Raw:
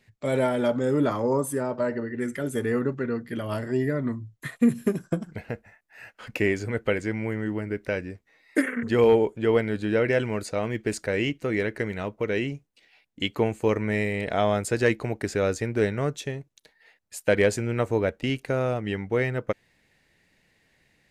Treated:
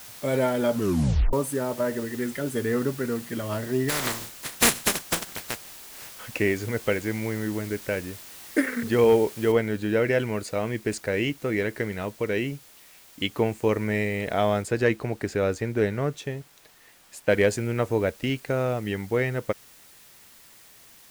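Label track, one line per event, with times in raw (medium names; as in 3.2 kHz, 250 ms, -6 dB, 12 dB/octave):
0.730000	0.730000	tape stop 0.60 s
3.880000	6.150000	spectral contrast reduction exponent 0.22
9.520000	9.520000	noise floor step -44 dB -52 dB
14.620000	17.290000	treble shelf 4.1 kHz -6 dB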